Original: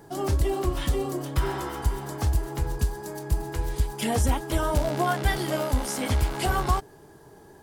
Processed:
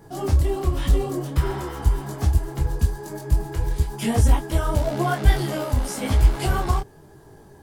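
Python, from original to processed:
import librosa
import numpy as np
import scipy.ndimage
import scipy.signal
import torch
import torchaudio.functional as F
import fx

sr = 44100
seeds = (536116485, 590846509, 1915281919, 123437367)

y = fx.low_shelf(x, sr, hz=210.0, db=7.0)
y = fx.detune_double(y, sr, cents=33)
y = y * 10.0 ** (3.5 / 20.0)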